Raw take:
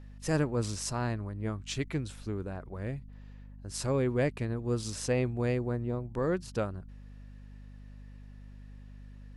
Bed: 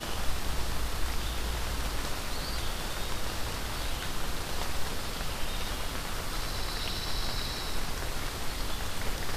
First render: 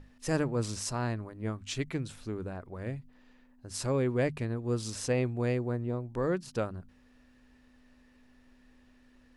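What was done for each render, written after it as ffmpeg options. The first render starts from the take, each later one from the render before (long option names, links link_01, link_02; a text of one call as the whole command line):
ffmpeg -i in.wav -af "bandreject=frequency=50:width_type=h:width=6,bandreject=frequency=100:width_type=h:width=6,bandreject=frequency=150:width_type=h:width=6,bandreject=frequency=200:width_type=h:width=6" out.wav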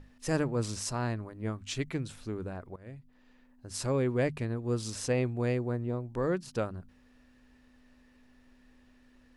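ffmpeg -i in.wav -filter_complex "[0:a]asplit=2[link_01][link_02];[link_01]atrim=end=2.76,asetpts=PTS-STARTPTS,afade=type=out:start_time=2.756:duration=0.004:curve=hsin:silence=0.133352[link_03];[link_02]atrim=start=2.76,asetpts=PTS-STARTPTS,afade=type=in:duration=0.93:curve=qsin:silence=0.133352[link_04];[link_03][link_04]concat=n=2:v=0:a=1" out.wav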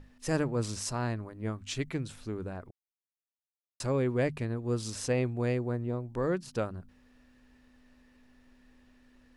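ffmpeg -i in.wav -filter_complex "[0:a]asplit=3[link_01][link_02][link_03];[link_01]atrim=end=2.71,asetpts=PTS-STARTPTS,afade=type=out:start_time=2.706:duration=0.004:curve=hsin[link_04];[link_02]atrim=start=2.71:end=3.8,asetpts=PTS-STARTPTS,volume=0[link_05];[link_03]atrim=start=3.8,asetpts=PTS-STARTPTS,afade=type=in:duration=0.004:curve=hsin[link_06];[link_04][link_05][link_06]concat=n=3:v=0:a=1" out.wav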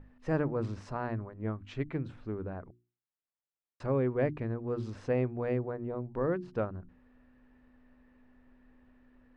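ffmpeg -i in.wav -af "lowpass=1700,bandreject=frequency=60:width_type=h:width=6,bandreject=frequency=120:width_type=h:width=6,bandreject=frequency=180:width_type=h:width=6,bandreject=frequency=240:width_type=h:width=6,bandreject=frequency=300:width_type=h:width=6,bandreject=frequency=360:width_type=h:width=6" out.wav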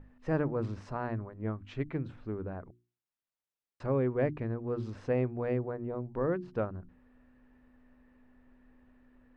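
ffmpeg -i in.wav -af "highshelf=frequency=5500:gain=-6.5" out.wav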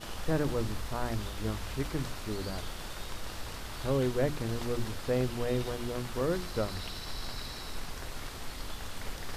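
ffmpeg -i in.wav -i bed.wav -filter_complex "[1:a]volume=-6.5dB[link_01];[0:a][link_01]amix=inputs=2:normalize=0" out.wav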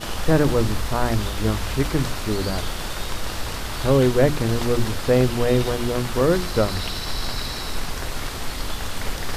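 ffmpeg -i in.wav -af "volume=12dB" out.wav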